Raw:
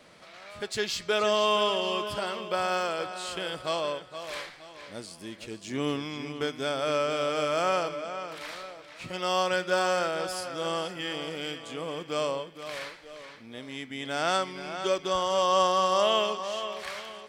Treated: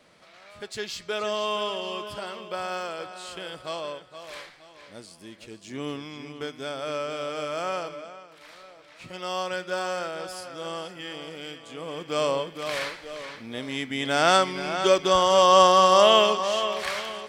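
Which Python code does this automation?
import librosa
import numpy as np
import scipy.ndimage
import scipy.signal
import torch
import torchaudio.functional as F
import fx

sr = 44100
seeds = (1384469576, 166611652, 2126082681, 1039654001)

y = fx.gain(x, sr, db=fx.line((8.0, -3.5), (8.28, -12.0), (8.87, -3.5), (11.66, -3.5), (12.48, 7.5)))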